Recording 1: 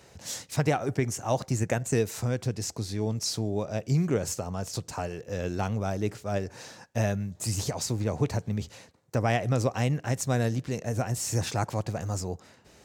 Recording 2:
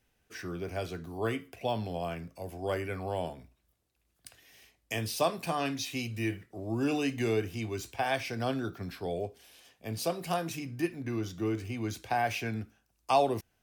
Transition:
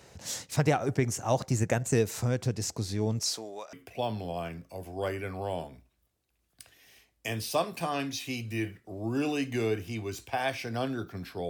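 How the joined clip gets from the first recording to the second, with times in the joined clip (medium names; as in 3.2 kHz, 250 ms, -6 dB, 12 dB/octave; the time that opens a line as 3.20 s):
recording 1
3.21–3.73 s: high-pass 290 Hz -> 1.3 kHz
3.73 s: go over to recording 2 from 1.39 s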